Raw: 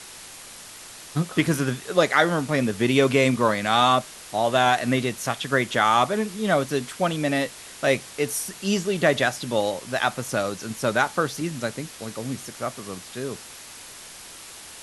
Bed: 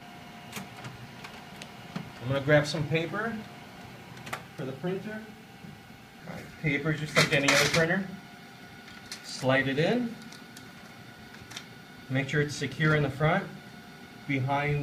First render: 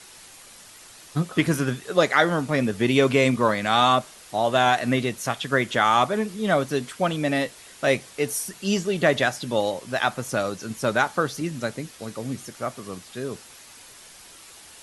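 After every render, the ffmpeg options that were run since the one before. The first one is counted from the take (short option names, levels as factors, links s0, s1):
-af "afftdn=nr=6:nf=-42"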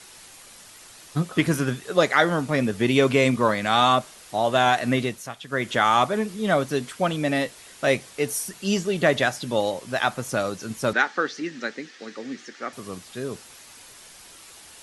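-filter_complex "[0:a]asettb=1/sr,asplit=3[s0][s1][s2];[s0]atrim=end=10.934[s3];[s1]atrim=start=10.93:end=12.73,asetpts=PTS-STARTPTS,afade=t=in:d=0.004:c=qsin,afade=t=out:st=1.796:d=0.004:c=qsin,highpass=f=240:w=0.5412,highpass=f=240:w=1.3066,equalizer=f=630:t=q:w=4:g=-9,equalizer=f=1000:t=q:w=4:g=-6,equalizer=f=1800:t=q:w=4:g=9,lowpass=f=6000:w=0.5412,lowpass=f=6000:w=1.3066[s4];[s2]atrim=start=12.726[s5];[s3][s4]acrossfade=d=0.004:c1=hsin:c2=qsin[s6];[s6][s5]acrossfade=d=0.004:c1=qsin:c2=hsin,asplit=3[s7][s8][s9];[s7]atrim=end=5.28,asetpts=PTS-STARTPTS,afade=t=out:st=5.04:d=0.24:silence=0.334965[s10];[s8]atrim=start=5.28:end=5.47,asetpts=PTS-STARTPTS,volume=0.335[s11];[s9]atrim=start=5.47,asetpts=PTS-STARTPTS,afade=t=in:d=0.24:silence=0.334965[s12];[s10][s11][s12]concat=n=3:v=0:a=1"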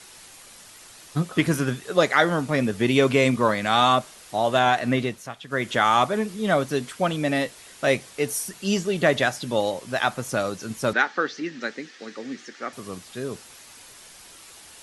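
-filter_complex "[0:a]asettb=1/sr,asplit=3[s0][s1][s2];[s0]atrim=end=4.594[s3];[s1]atrim=start=4.59:end=5.51,asetpts=PTS-STARTPTS,afade=t=in:d=0.004:c=qsin,afade=t=out:st=0.916:d=0.004:c=qsin,highshelf=f=5600:g=-6.5[s4];[s2]atrim=start=5.506[s5];[s3][s4]acrossfade=d=0.004:c1=hsin:c2=qsin[s6];[s6][s5]acrossfade=d=0.004:c1=qsin:c2=hsin,asettb=1/sr,asplit=3[s7][s8][s9];[s7]atrim=end=10.944[s10];[s8]atrim=start=10.94:end=11.62,asetpts=PTS-STARTPTS,afade=t=in:d=0.004:c=qsin,afade=t=out:st=0.676:d=0.004:c=qsin,lowpass=6500[s11];[s9]atrim=start=11.616[s12];[s10][s11]acrossfade=d=0.004:c1=hsin:c2=qsin[s13];[s13][s12]acrossfade=d=0.004:c1=qsin:c2=hsin"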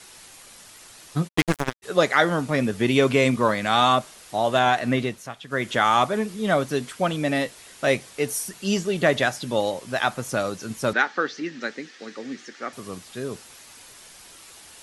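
-filter_complex "[0:a]asplit=3[s0][s1][s2];[s0]afade=t=out:st=1.27:d=0.02[s3];[s1]acrusher=bits=2:mix=0:aa=0.5,afade=t=in:st=1.27:d=0.02,afade=t=out:st=1.82:d=0.02[s4];[s2]afade=t=in:st=1.82:d=0.02[s5];[s3][s4][s5]amix=inputs=3:normalize=0"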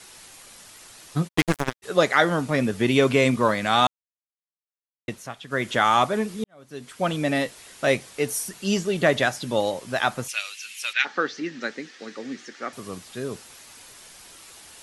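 -filter_complex "[0:a]asplit=3[s0][s1][s2];[s0]afade=t=out:st=10.27:d=0.02[s3];[s1]highpass=f=2600:t=q:w=4.6,afade=t=in:st=10.27:d=0.02,afade=t=out:st=11.04:d=0.02[s4];[s2]afade=t=in:st=11.04:d=0.02[s5];[s3][s4][s5]amix=inputs=3:normalize=0,asplit=4[s6][s7][s8][s9];[s6]atrim=end=3.87,asetpts=PTS-STARTPTS,afade=t=out:st=3.866:d=0.004:c=hsin[s10];[s7]atrim=start=3.87:end=5.08,asetpts=PTS-STARTPTS,volume=0[s11];[s8]atrim=start=5.08:end=6.44,asetpts=PTS-STARTPTS,afade=t=in:d=0.004:c=hsin,afade=t=out:st=1.356:d=0.004:c=hsin[s12];[s9]atrim=start=6.44,asetpts=PTS-STARTPTS,afade=t=in:d=0.65:c=qua[s13];[s10][s11][s12][s13]concat=n=4:v=0:a=1"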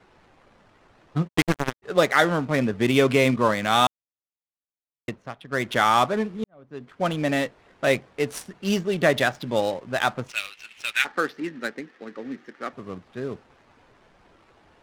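-af "adynamicsmooth=sensitivity=6.5:basefreq=1000"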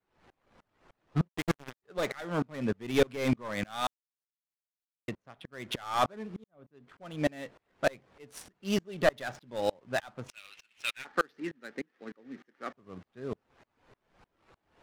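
-af "aeval=exprs='clip(val(0),-1,0.141)':c=same,aeval=exprs='val(0)*pow(10,-31*if(lt(mod(-3.3*n/s,1),2*abs(-3.3)/1000),1-mod(-3.3*n/s,1)/(2*abs(-3.3)/1000),(mod(-3.3*n/s,1)-2*abs(-3.3)/1000)/(1-2*abs(-3.3)/1000))/20)':c=same"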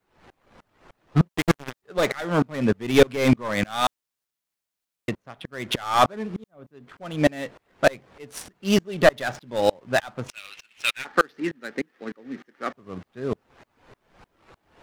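-af "volume=2.99,alimiter=limit=0.708:level=0:latency=1"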